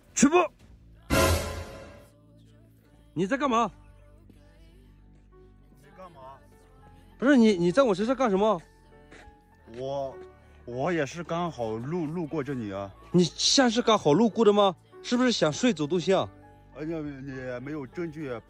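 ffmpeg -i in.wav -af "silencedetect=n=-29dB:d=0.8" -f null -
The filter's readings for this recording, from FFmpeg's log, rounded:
silence_start: 1.61
silence_end: 3.17 | silence_duration: 1.56
silence_start: 3.67
silence_end: 7.22 | silence_duration: 3.55
silence_start: 8.57
silence_end: 9.79 | silence_duration: 1.22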